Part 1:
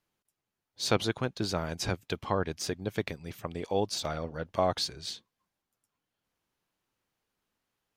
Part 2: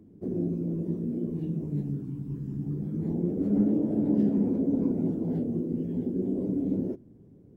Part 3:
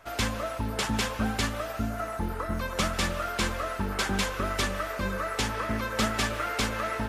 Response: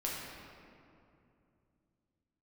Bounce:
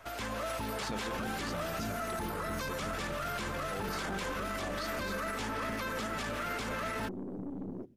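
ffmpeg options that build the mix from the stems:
-filter_complex "[0:a]volume=-16.5dB[link_01];[1:a]acompressor=threshold=-26dB:ratio=6,aeval=exprs='(tanh(28.2*val(0)+0.5)-tanh(0.5))/28.2':channel_layout=same,adelay=900,volume=-16dB[link_02];[2:a]acrossover=split=260|2100[link_03][link_04][link_05];[link_03]acompressor=threshold=-49dB:ratio=4[link_06];[link_04]acompressor=threshold=-42dB:ratio=4[link_07];[link_05]acompressor=threshold=-48dB:ratio=4[link_08];[link_06][link_07][link_08]amix=inputs=3:normalize=0,volume=0.5dB[link_09];[link_01][link_02][link_09]amix=inputs=3:normalize=0,dynaudnorm=framelen=120:gausssize=5:maxgain=10dB,alimiter=level_in=4dB:limit=-24dB:level=0:latency=1:release=22,volume=-4dB"

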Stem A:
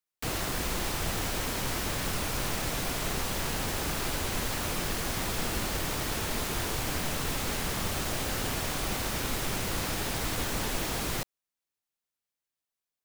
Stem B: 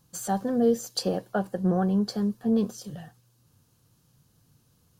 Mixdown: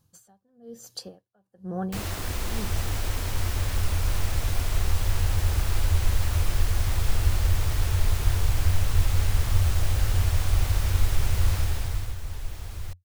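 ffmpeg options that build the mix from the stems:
ffmpeg -i stem1.wav -i stem2.wav -filter_complex "[0:a]asubboost=boost=10:cutoff=68,adelay=1700,volume=-2.5dB,afade=type=out:start_time=11.53:duration=0.62:silence=0.266073[link_01];[1:a]aeval=exprs='val(0)*pow(10,-35*(0.5-0.5*cos(2*PI*1.1*n/s))/20)':channel_layout=same,volume=-5dB[link_02];[link_01][link_02]amix=inputs=2:normalize=0,equalizer=frequency=89:width=3.5:gain=13.5" out.wav

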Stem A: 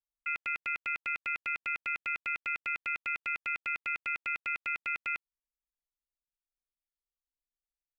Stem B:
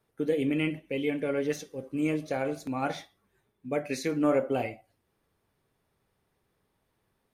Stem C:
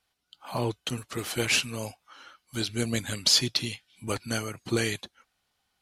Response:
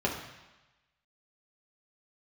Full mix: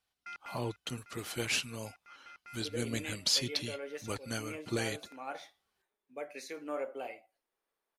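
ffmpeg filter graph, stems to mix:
-filter_complex "[0:a]lowpass=frequency=1900:width=0.5412,lowpass=frequency=1900:width=1.3066,asoftclip=type=tanh:threshold=-34.5dB,volume=-4.5dB[link_01];[1:a]highpass=480,adelay=2450,volume=-9dB[link_02];[2:a]volume=-7.5dB,asplit=2[link_03][link_04];[link_04]apad=whole_len=352048[link_05];[link_01][link_05]sidechaincompress=threshold=-47dB:ratio=8:attack=12:release=943[link_06];[link_06][link_02][link_03]amix=inputs=3:normalize=0"

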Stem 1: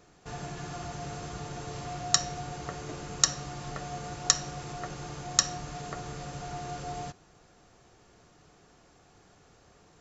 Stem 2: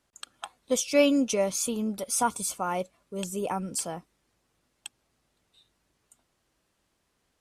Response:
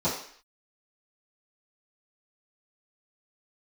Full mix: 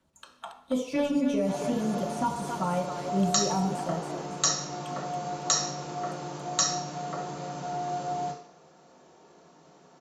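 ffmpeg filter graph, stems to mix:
-filter_complex "[0:a]highpass=270,adelay=1200,volume=-4.5dB,asplit=2[link_01][link_02];[link_02]volume=-4.5dB[link_03];[1:a]acrossover=split=2600[link_04][link_05];[link_05]acompressor=threshold=-43dB:ratio=4:attack=1:release=60[link_06];[link_04][link_06]amix=inputs=2:normalize=0,aphaser=in_gain=1:out_gain=1:delay=4.6:decay=0.4:speed=0.95:type=sinusoidal,aeval=exprs='0.398*sin(PI/2*1.41*val(0)/0.398)':channel_layout=same,volume=-11.5dB,asplit=3[link_07][link_08][link_09];[link_08]volume=-9dB[link_10];[link_09]volume=-5.5dB[link_11];[2:a]atrim=start_sample=2205[link_12];[link_03][link_10]amix=inputs=2:normalize=0[link_13];[link_13][link_12]afir=irnorm=-1:irlink=0[link_14];[link_11]aecho=0:1:278|556|834|1112:1|0.29|0.0841|0.0244[link_15];[link_01][link_07][link_14][link_15]amix=inputs=4:normalize=0,acrossover=split=220|3000[link_16][link_17][link_18];[link_17]acompressor=threshold=-26dB:ratio=6[link_19];[link_16][link_19][link_18]amix=inputs=3:normalize=0"

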